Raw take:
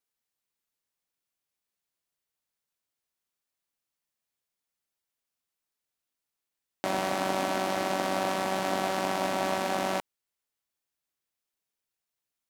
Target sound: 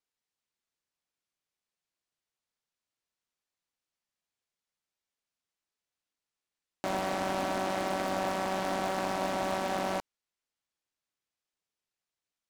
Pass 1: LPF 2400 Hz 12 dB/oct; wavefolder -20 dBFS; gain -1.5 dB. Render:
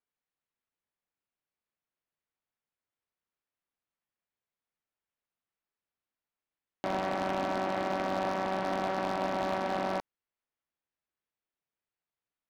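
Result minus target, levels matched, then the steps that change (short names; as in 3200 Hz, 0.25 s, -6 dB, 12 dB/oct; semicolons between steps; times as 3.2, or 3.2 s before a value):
8000 Hz band -9.5 dB
change: LPF 7700 Hz 12 dB/oct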